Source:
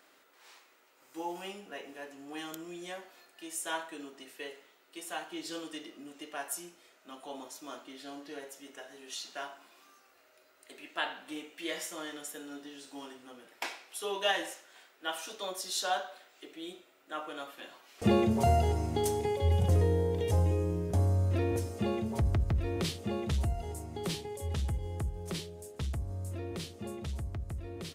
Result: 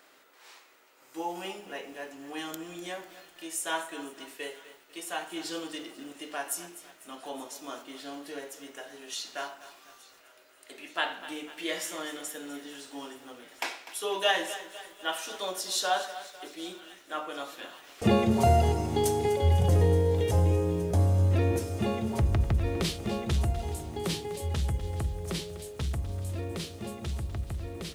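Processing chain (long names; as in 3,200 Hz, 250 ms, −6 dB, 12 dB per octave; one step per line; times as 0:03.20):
mains-hum notches 50/100/150/200/250/300/350 Hz
delay with a high-pass on its return 872 ms, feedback 77%, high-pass 1,400 Hz, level −21 dB
feedback echo at a low word length 249 ms, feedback 55%, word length 9 bits, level −14 dB
level +4 dB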